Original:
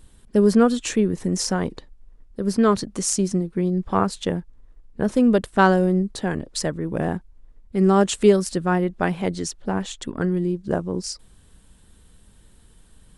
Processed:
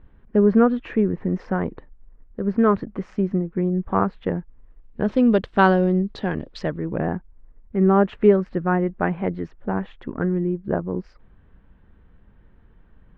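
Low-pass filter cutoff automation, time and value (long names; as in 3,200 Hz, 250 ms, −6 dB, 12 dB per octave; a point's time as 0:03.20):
low-pass filter 24 dB per octave
0:04.32 2,100 Hz
0:05.20 3,900 Hz
0:06.44 3,900 Hz
0:07.11 2,100 Hz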